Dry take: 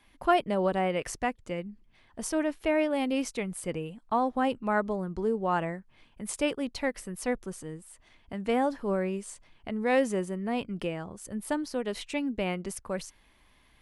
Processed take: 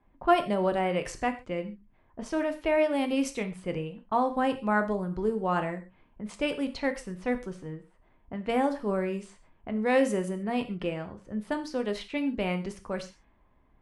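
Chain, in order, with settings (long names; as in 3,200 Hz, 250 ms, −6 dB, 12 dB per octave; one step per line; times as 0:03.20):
low-pass that shuts in the quiet parts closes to 850 Hz, open at −26.5 dBFS
reverb whose tail is shaped and stops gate 160 ms falling, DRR 7 dB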